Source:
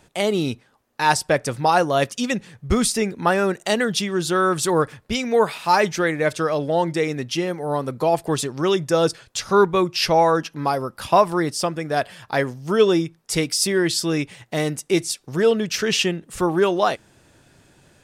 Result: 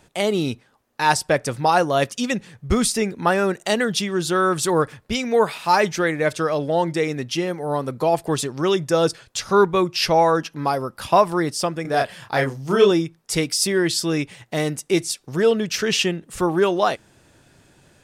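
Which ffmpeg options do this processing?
-filter_complex "[0:a]asettb=1/sr,asplit=3[a][b][c];[a]atrim=end=11.824[d];[b]atrim=start=11.82:end=12.91,asetpts=PTS-STARTPTS,afade=t=in:d=0.004:c=qsin,afade=t=out:st=1.086:d=0.004:c=qsin,asplit=2[e][f];[f]adelay=30,volume=-3dB[g];[e][g]amix=inputs=2:normalize=0,atrim=end_sample=48069[h];[c]atrim=start=12.906[i];[d][h]acrossfade=d=0.004:c1=hsin:c2=qsin[j];[j][i]acrossfade=d=0.004:c1=qsin:c2=hsin"

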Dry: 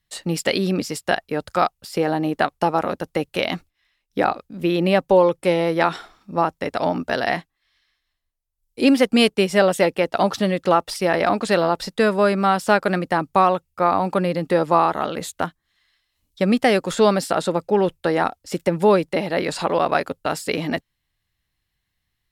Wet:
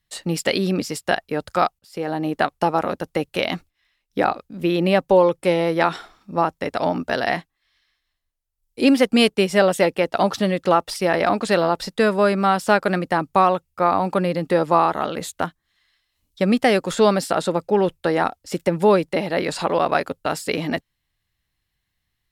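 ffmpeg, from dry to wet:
-filter_complex "[0:a]asplit=2[a][b];[a]atrim=end=1.79,asetpts=PTS-STARTPTS,afade=t=out:st=1.786:d=0.004:c=hsin:silence=0.0749894[c];[b]atrim=start=1.79,asetpts=PTS-STARTPTS,afade=t=in:d=0.75:c=qsin:silence=0.0749894[d];[c][d]concat=n=2:v=0:a=1"

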